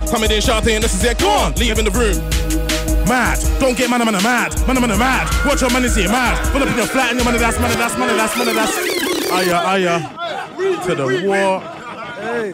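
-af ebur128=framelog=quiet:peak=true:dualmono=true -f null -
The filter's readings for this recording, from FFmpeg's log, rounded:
Integrated loudness:
  I:         -12.9 LUFS
  Threshold: -23.0 LUFS
Loudness range:
  LRA:         2.0 LU
  Threshold: -32.9 LUFS
  LRA low:   -14.1 LUFS
  LRA high:  -12.1 LUFS
True peak:
  Peak:       -6.0 dBFS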